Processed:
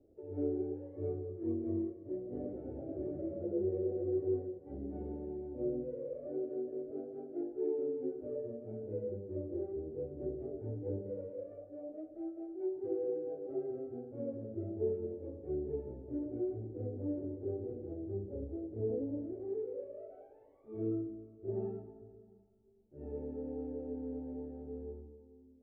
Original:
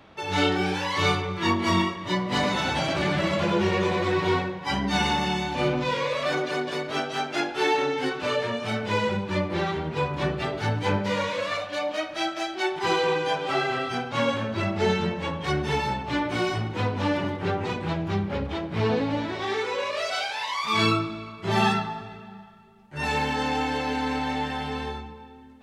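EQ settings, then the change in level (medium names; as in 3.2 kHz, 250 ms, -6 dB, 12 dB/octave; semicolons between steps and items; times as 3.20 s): four-pole ladder low-pass 540 Hz, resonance 25%; static phaser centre 420 Hz, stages 4; -3.0 dB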